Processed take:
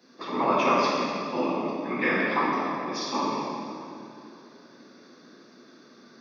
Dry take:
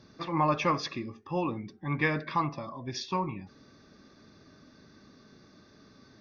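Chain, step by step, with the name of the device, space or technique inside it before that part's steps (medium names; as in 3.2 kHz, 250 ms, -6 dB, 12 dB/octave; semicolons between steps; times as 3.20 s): whispering ghost (whisper effect; high-pass 210 Hz 24 dB/octave; reverberation RT60 2.7 s, pre-delay 6 ms, DRR -6 dB); trim -1.5 dB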